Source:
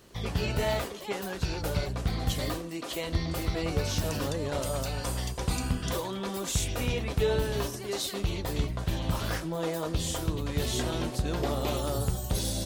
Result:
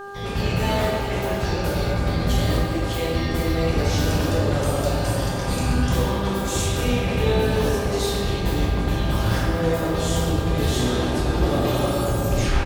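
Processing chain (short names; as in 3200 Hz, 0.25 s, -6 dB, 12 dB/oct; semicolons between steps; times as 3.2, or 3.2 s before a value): tape stop at the end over 0.44 s; frequency-shifting echo 0.128 s, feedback 49%, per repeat +69 Hz, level -14.5 dB; shoebox room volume 140 m³, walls hard, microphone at 0.92 m; buzz 400 Hz, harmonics 4, -36 dBFS -2 dB/oct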